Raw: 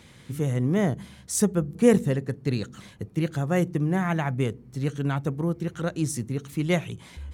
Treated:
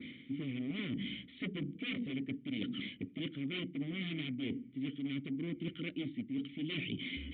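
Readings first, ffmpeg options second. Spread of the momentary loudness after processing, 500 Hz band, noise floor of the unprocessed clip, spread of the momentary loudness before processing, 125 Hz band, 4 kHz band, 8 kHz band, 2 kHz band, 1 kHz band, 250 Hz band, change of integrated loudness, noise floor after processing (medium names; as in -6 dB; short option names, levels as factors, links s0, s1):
3 LU, -22.0 dB, -51 dBFS, 9 LU, -18.0 dB, -0.5 dB, under -40 dB, -8.0 dB, -26.5 dB, -11.0 dB, -13.5 dB, -56 dBFS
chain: -filter_complex "[0:a]aresample=11025,aeval=exprs='0.0668*(abs(mod(val(0)/0.0668+3,4)-2)-1)':c=same,aresample=44100,bandreject=f=1600:w=6.1,adynamicequalizer=threshold=0.00224:dfrequency=3000:dqfactor=2:tfrequency=3000:tqfactor=2:attack=5:release=100:ratio=0.375:range=2.5:mode=boostabove:tftype=bell,asplit=3[s0][s1][s2];[s0]bandpass=f=270:t=q:w=8,volume=1[s3];[s1]bandpass=f=2290:t=q:w=8,volume=0.501[s4];[s2]bandpass=f=3010:t=q:w=8,volume=0.355[s5];[s3][s4][s5]amix=inputs=3:normalize=0,areverse,acompressor=threshold=0.002:ratio=10,areverse,aresample=8000,aresample=44100,volume=7.94"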